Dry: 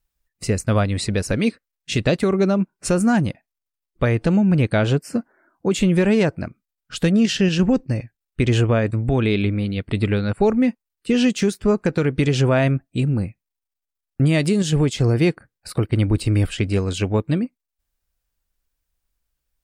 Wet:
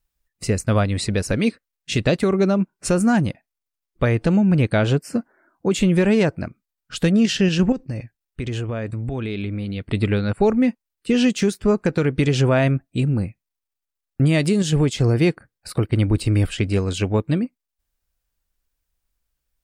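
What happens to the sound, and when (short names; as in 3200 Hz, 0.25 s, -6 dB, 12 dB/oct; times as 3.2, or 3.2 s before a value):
7.72–9.81 compressor 4:1, threshold -24 dBFS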